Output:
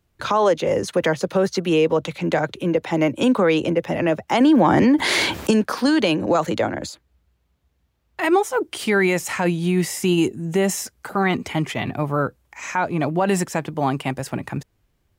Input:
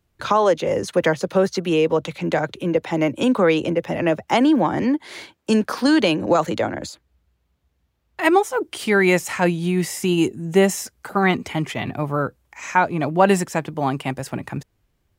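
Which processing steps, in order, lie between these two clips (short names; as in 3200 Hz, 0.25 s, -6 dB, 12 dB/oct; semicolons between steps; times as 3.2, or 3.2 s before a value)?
limiter -10 dBFS, peak gain reduction 7.5 dB; 4.4–5.51 fast leveller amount 70%; gain +1 dB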